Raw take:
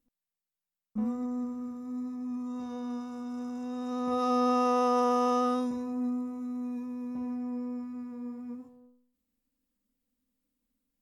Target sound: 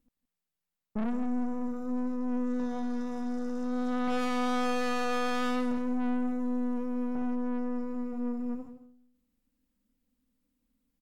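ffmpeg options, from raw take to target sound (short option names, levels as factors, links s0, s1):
-filter_complex "[0:a]bass=f=250:g=5,treble=f=4000:g=-3,aeval=exprs='(tanh(70.8*val(0)+0.8)-tanh(0.8))/70.8':c=same,asplit=2[s0][s1];[s1]aecho=0:1:169:0.211[s2];[s0][s2]amix=inputs=2:normalize=0,volume=2.37"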